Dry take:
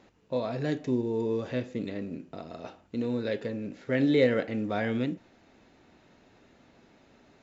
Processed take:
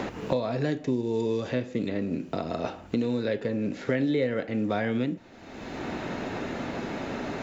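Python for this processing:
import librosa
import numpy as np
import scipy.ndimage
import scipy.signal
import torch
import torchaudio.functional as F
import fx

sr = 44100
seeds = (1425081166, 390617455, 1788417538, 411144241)

y = fx.band_squash(x, sr, depth_pct=100)
y = F.gain(torch.from_numpy(y), 2.0).numpy()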